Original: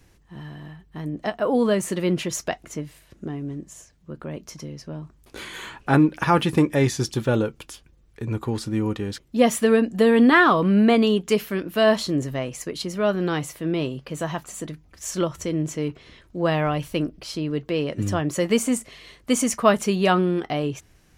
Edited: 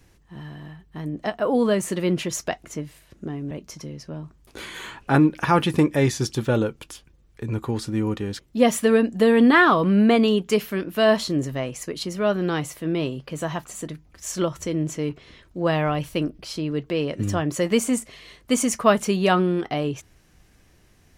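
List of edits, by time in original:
3.51–4.3 cut

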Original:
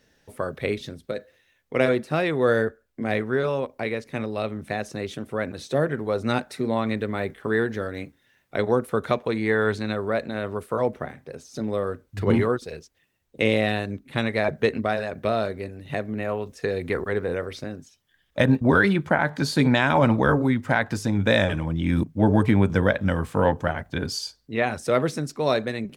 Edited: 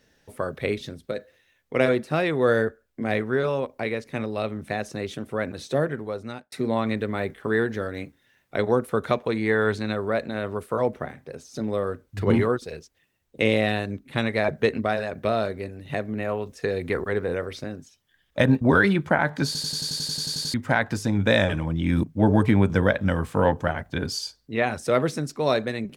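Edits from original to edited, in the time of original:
5.72–6.52 fade out
19.46 stutter in place 0.09 s, 12 plays

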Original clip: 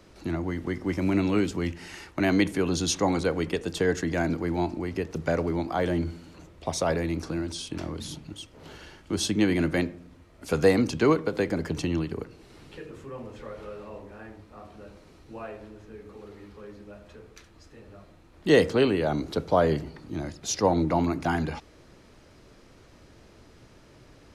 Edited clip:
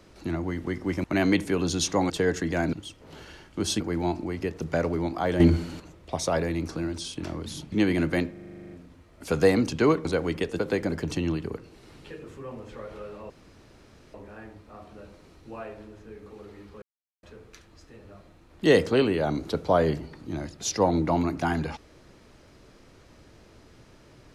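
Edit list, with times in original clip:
1.04–2.11 cut
3.17–3.71 move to 11.26
5.94–6.34 gain +10 dB
8.26–9.33 move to 4.34
9.92 stutter 0.04 s, 11 plays
13.97 insert room tone 0.84 s
16.65–17.06 mute

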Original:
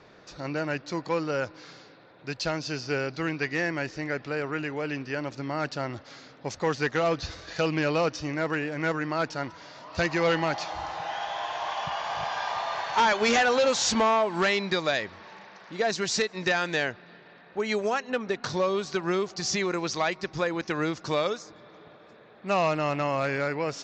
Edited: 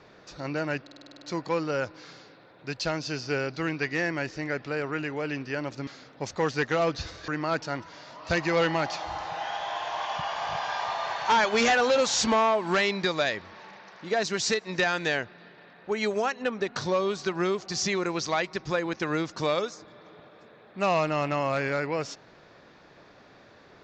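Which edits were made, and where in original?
0.82 stutter 0.05 s, 9 plays
5.47–6.11 cut
7.52–8.96 cut

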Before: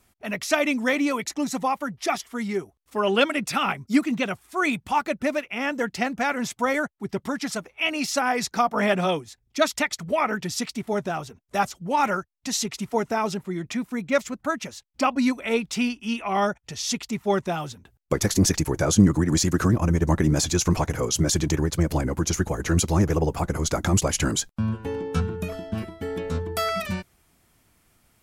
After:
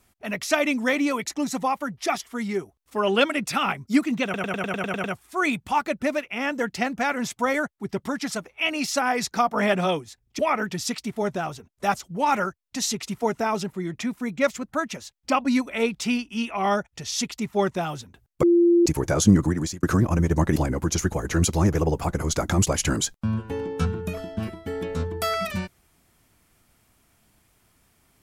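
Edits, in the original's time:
4.24 stutter 0.10 s, 9 plays
9.59–10.1 cut
18.14–18.57 bleep 344 Hz -13.5 dBFS
19.16–19.54 fade out
20.27–21.91 cut

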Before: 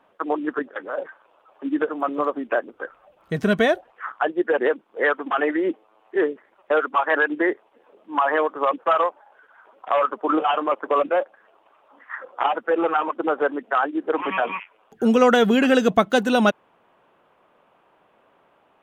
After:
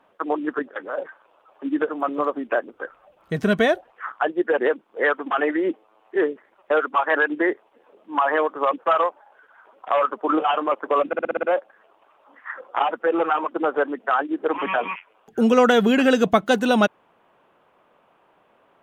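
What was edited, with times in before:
11.07 stutter 0.06 s, 7 plays

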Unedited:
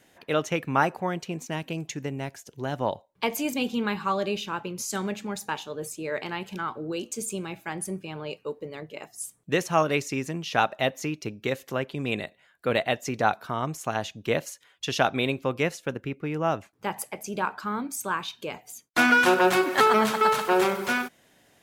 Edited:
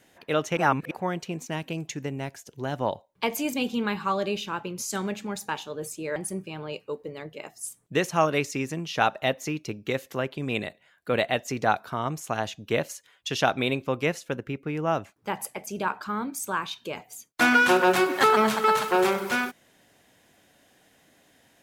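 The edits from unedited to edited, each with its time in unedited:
0.57–0.91 reverse
6.16–7.73 cut

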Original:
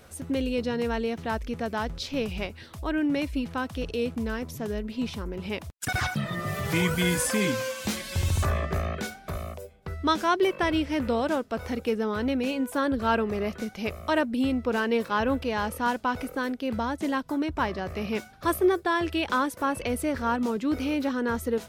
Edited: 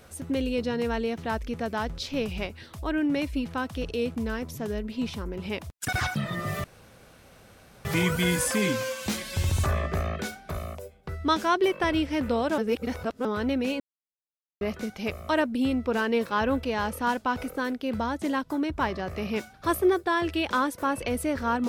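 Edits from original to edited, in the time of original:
6.64 insert room tone 1.21 s
11.37–12.04 reverse
12.59–13.4 mute

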